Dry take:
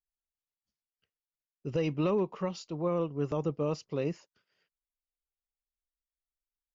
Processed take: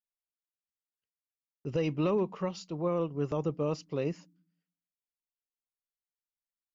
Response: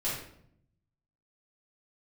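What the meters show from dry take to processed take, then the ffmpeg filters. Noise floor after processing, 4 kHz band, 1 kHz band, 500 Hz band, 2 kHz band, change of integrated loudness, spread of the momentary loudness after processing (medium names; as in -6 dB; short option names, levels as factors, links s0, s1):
under -85 dBFS, 0.0 dB, 0.0 dB, 0.0 dB, 0.0 dB, 0.0 dB, 7 LU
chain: -filter_complex "[0:a]agate=range=0.126:threshold=0.00112:ratio=16:detection=peak,asplit=2[s0][s1];[s1]asuperpass=centerf=230:order=20:qfactor=1.5[s2];[1:a]atrim=start_sample=2205,asetrate=66150,aresample=44100[s3];[s2][s3]afir=irnorm=-1:irlink=0,volume=0.0794[s4];[s0][s4]amix=inputs=2:normalize=0"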